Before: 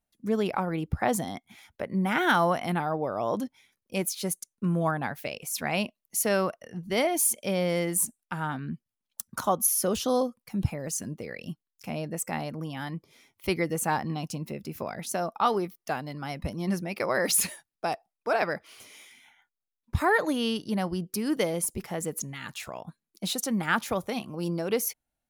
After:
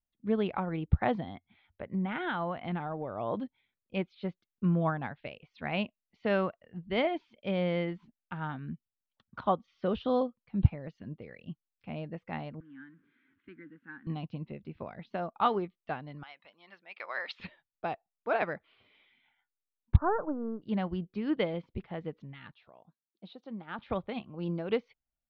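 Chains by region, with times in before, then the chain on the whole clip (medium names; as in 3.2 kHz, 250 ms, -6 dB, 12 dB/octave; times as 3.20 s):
1.23–3.17 s: low-pass 5.1 kHz + peaking EQ 90 Hz +4.5 dB 0.23 oct + compression 2.5:1, threshold -26 dBFS
12.60–14.07 s: jump at every zero crossing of -39.5 dBFS + two resonant band-passes 660 Hz, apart 2.5 oct
16.23–17.40 s: high-pass 990 Hz + treble shelf 3.6 kHz +6.5 dB
19.96–20.62 s: partial rectifier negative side -3 dB + steep low-pass 1.5 kHz 72 dB/octave + bass shelf 160 Hz -5 dB
22.51–23.79 s: high-pass 450 Hz 6 dB/octave + peaking EQ 2.1 kHz -11.5 dB 2 oct
whole clip: steep low-pass 3.8 kHz 48 dB/octave; bass shelf 100 Hz +11 dB; upward expansion 1.5:1, over -43 dBFS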